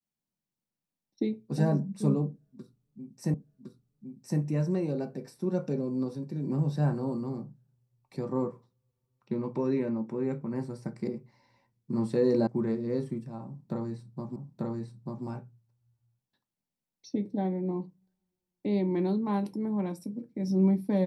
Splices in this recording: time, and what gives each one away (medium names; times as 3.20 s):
3.34 s: repeat of the last 1.06 s
12.47 s: sound stops dead
14.36 s: repeat of the last 0.89 s